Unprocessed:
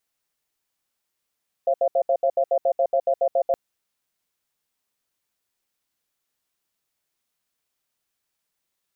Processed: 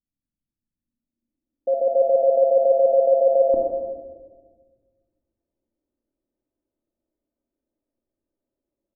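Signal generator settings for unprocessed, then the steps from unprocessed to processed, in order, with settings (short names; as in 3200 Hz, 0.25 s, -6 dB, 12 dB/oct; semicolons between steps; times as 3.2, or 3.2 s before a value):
cadence 539 Hz, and 685 Hz, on 0.07 s, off 0.07 s, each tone -19.5 dBFS 1.87 s
low-pass sweep 170 Hz -> 430 Hz, 0.69–1.96; comb 3.3 ms, depth 64%; shoebox room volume 1200 m³, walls mixed, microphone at 2.1 m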